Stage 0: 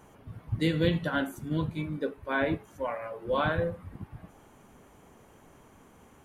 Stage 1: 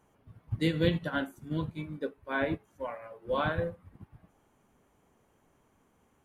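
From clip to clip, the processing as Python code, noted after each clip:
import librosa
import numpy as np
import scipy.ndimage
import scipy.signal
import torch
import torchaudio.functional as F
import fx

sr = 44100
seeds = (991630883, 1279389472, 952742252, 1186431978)

y = fx.upward_expand(x, sr, threshold_db=-46.0, expansion=1.5)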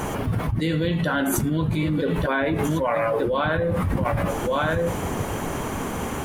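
y = x + 10.0 ** (-21.5 / 20.0) * np.pad(x, (int(1178 * sr / 1000.0), 0))[:len(x)]
y = fx.env_flatten(y, sr, amount_pct=100)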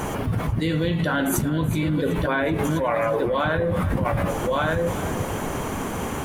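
y = fx.echo_feedback(x, sr, ms=376, feedback_pct=39, wet_db=-14)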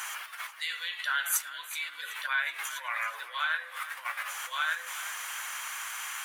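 y = scipy.signal.sosfilt(scipy.signal.butter(4, 1400.0, 'highpass', fs=sr, output='sos'), x)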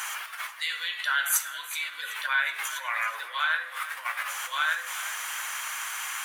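y = fx.rev_plate(x, sr, seeds[0], rt60_s=0.75, hf_ratio=0.8, predelay_ms=0, drr_db=11.0)
y = F.gain(torch.from_numpy(y), 3.5).numpy()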